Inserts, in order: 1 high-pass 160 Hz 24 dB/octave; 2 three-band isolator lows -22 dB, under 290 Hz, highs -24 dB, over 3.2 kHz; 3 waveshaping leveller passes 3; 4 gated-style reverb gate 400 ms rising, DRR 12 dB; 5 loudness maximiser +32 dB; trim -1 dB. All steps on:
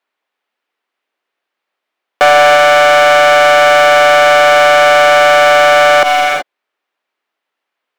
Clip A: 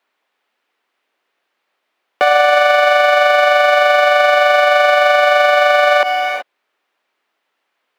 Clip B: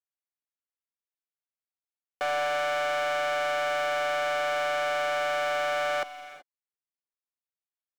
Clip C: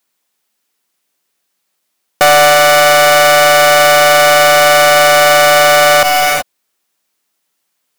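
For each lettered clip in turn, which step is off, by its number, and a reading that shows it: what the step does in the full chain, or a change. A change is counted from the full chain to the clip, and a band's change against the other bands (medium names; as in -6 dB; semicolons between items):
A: 3, crest factor change +4.5 dB; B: 5, loudness change -21.0 LU; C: 2, 8 kHz band +8.0 dB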